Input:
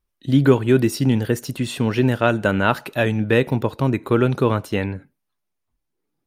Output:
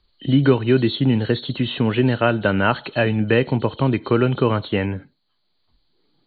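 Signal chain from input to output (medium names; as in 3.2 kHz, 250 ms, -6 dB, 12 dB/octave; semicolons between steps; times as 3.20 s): knee-point frequency compression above 2.9 kHz 4:1; three bands compressed up and down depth 40%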